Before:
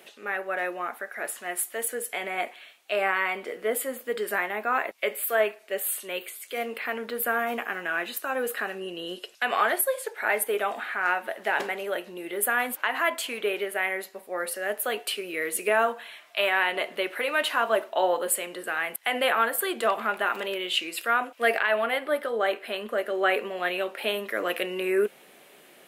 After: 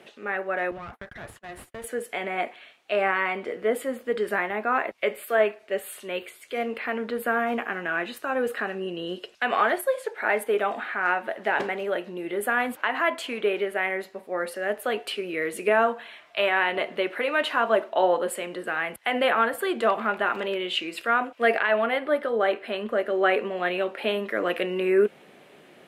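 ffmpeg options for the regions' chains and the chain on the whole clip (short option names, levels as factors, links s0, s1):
-filter_complex "[0:a]asettb=1/sr,asplit=3[s0][s1][s2];[s0]atrim=end=0.714[s3];[s1]atrim=start=0.71:end=1.84,asetpts=PTS-STARTPTS,afade=t=in:d=0.004:c=qsin,afade=t=out:st=1.126:d=0.004:c=qsin,agate=range=0.0251:threshold=0.00794:ratio=16:release=100:detection=peak,acompressor=threshold=0.0141:ratio=2:attack=3.2:release=140:knee=1:detection=peak,aeval=exprs='clip(val(0),-1,0.00501)':c=same[s4];[s2]atrim=start=1.836[s5];[s3][s4]acrossfade=d=0.004:c1=hsin:c2=qsin[s6];[s6][s5]acrossfade=d=0.004:c1=qsin:c2=hsin,highpass=66,aemphasis=mode=reproduction:type=bsi,volume=1.19"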